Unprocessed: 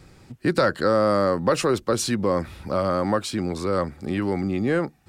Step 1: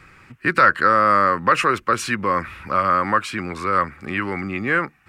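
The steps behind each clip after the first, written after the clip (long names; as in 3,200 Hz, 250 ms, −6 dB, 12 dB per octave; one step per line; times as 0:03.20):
flat-topped bell 1,700 Hz +14.5 dB
level −3 dB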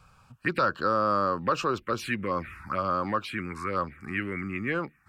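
phaser swept by the level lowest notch 320 Hz, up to 2,000 Hz, full sweep at −15 dBFS
level −5 dB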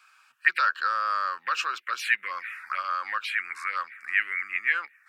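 high-pass with resonance 1,800 Hz, resonance Q 2.4
level +2 dB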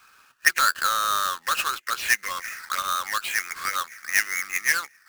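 each half-wave held at its own peak
notch filter 2,300 Hz, Q 20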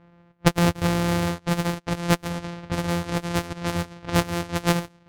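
samples sorted by size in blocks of 256 samples
low-pass that shuts in the quiet parts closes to 2,100 Hz, open at −22.5 dBFS
highs frequency-modulated by the lows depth 0.23 ms
level +1.5 dB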